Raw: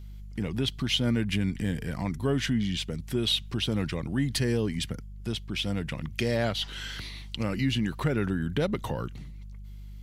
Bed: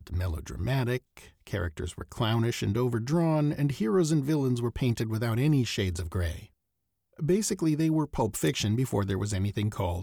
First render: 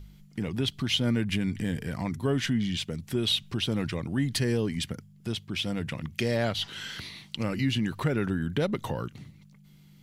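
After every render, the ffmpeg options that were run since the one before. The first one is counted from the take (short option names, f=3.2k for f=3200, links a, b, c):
-af "bandreject=f=50:t=h:w=4,bandreject=f=100:t=h:w=4"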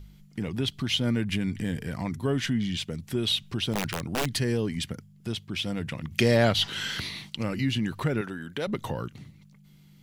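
-filter_complex "[0:a]asplit=3[a][b][c];[a]afade=t=out:st=3.73:d=0.02[d];[b]aeval=exprs='(mod(11.9*val(0)+1,2)-1)/11.9':c=same,afade=t=in:st=3.73:d=0.02,afade=t=out:st=4.28:d=0.02[e];[c]afade=t=in:st=4.28:d=0.02[f];[d][e][f]amix=inputs=3:normalize=0,asettb=1/sr,asplit=3[g][h][i];[g]atrim=end=6.114[j];[h]atrim=start=6.11:end=7.3,asetpts=PTS-STARTPTS,afade=t=in:d=0.004:c=qsin,afade=t=out:st=1.186:d=0.004:c=qsin,acontrast=58[k];[i]atrim=start=7.296[l];[j][k]acrossfade=d=0.004:c1=hsin:c2=qsin[m];[m][l]acrossfade=d=0.004:c1=qsin:c2=hsin,asettb=1/sr,asplit=3[n][o][p];[n]atrim=end=8.214[q];[o]atrim=start=8.21:end=8.67,asetpts=PTS-STARTPTS,afade=t=in:d=0.004:c=qsin,afade=t=out:st=0.456:d=0.004:c=qsin,highpass=f=530:p=1[r];[p]atrim=start=8.666[s];[q][r]acrossfade=d=0.004:c1=hsin:c2=qsin[t];[t][s]acrossfade=d=0.004:c1=qsin:c2=hsin"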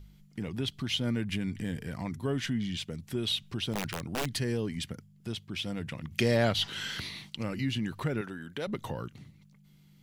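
-af "volume=-4.5dB"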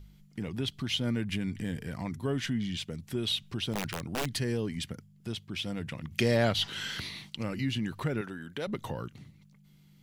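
-af anull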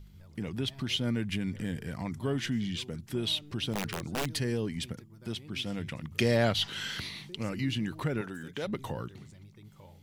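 -filter_complex "[1:a]volume=-24.5dB[a];[0:a][a]amix=inputs=2:normalize=0"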